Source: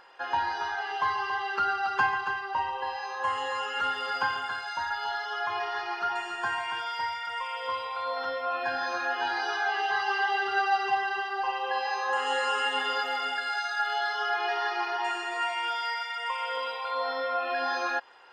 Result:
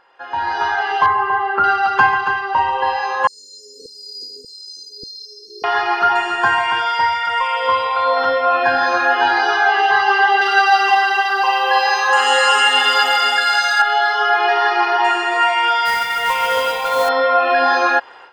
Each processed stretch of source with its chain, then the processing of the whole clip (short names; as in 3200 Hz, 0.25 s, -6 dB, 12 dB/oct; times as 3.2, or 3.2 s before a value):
1.06–1.64 LPF 1600 Hz + doubler 36 ms -14 dB
3.27–5.64 LFO high-pass saw down 1.7 Hz 630–2100 Hz + brick-wall FIR band-stop 490–4100 Hz
10.41–13.82 RIAA curve recording + lo-fi delay 0.267 s, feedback 55%, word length 9-bit, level -11 dB
15.85–17.09 notch 1100 Hz, Q 6 + modulation noise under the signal 12 dB
whole clip: high shelf 4300 Hz -8.5 dB; AGC gain up to 16.5 dB